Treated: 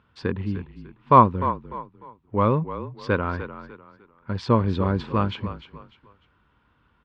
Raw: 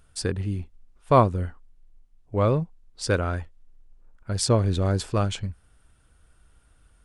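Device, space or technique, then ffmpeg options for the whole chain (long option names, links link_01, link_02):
frequency-shifting delay pedal into a guitar cabinet: -filter_complex "[0:a]asplit=4[link_01][link_02][link_03][link_04];[link_02]adelay=299,afreqshift=-35,volume=-12dB[link_05];[link_03]adelay=598,afreqshift=-70,volume=-21.9dB[link_06];[link_04]adelay=897,afreqshift=-105,volume=-31.8dB[link_07];[link_01][link_05][link_06][link_07]amix=inputs=4:normalize=0,highpass=100,equalizer=frequency=220:width_type=q:width=4:gain=5,equalizer=frequency=670:width_type=q:width=4:gain=-7,equalizer=frequency=1000:width_type=q:width=4:gain=10,lowpass=frequency=3400:width=0.5412,lowpass=frequency=3400:width=1.3066,volume=1dB"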